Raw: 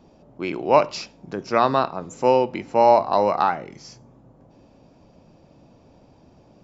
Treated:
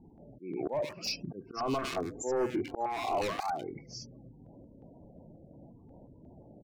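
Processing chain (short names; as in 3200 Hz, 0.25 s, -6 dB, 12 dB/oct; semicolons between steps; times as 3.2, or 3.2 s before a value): spectral gate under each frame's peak -15 dB strong; 1.45–3.75 comb 2.7 ms, depth 65%; vocal rider within 3 dB 0.5 s; auto swell 0.299 s; overloaded stage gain 26 dB; bands offset in time lows, highs 0.1 s, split 1700 Hz; stepped notch 5.6 Hz 590–3700 Hz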